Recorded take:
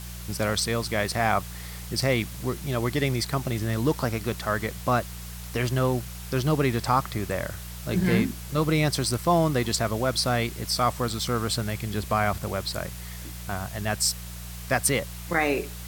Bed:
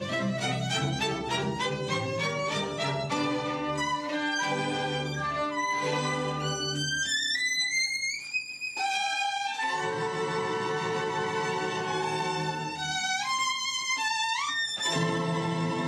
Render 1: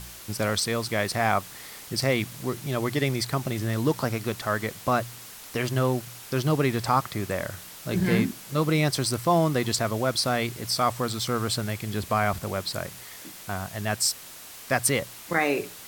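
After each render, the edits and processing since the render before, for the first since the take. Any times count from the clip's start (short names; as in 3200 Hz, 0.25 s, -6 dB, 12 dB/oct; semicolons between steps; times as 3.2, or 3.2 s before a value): de-hum 60 Hz, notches 3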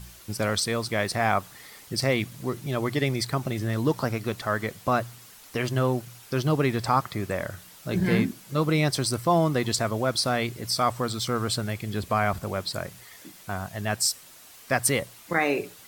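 denoiser 7 dB, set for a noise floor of -44 dBFS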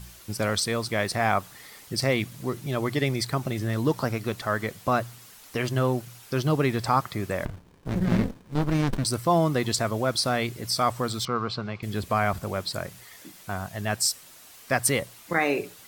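7.45–9.05 running maximum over 65 samples; 11.25–11.83 speaker cabinet 130–4300 Hz, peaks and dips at 290 Hz -6 dB, 590 Hz -4 dB, 1100 Hz +7 dB, 1800 Hz -7 dB, 3300 Hz -6 dB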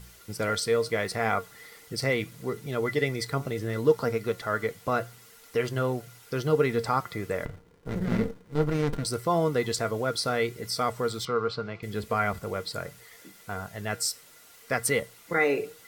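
flange 0.74 Hz, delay 4.1 ms, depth 3.2 ms, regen +85%; small resonant body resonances 460/1400/2000 Hz, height 14 dB, ringing for 95 ms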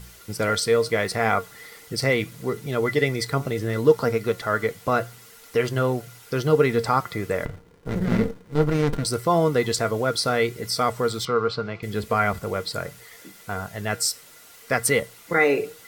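gain +5 dB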